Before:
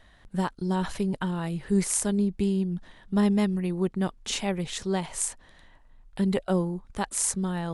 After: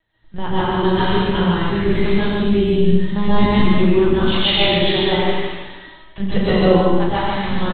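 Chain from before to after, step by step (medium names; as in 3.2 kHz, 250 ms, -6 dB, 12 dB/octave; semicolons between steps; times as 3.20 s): coarse spectral quantiser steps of 15 dB; gate with hold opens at -44 dBFS; LPC vocoder at 8 kHz pitch kept; treble shelf 2.9 kHz +8.5 dB; loudspeakers at several distances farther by 12 m -6 dB, 31 m -9 dB, 50 m -3 dB; plate-style reverb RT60 1.2 s, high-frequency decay 1×, pre-delay 115 ms, DRR -9 dB; trim +3 dB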